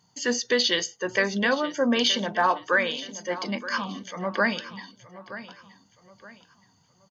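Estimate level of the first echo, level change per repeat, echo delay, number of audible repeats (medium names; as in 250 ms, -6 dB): -15.0 dB, -9.0 dB, 922 ms, 3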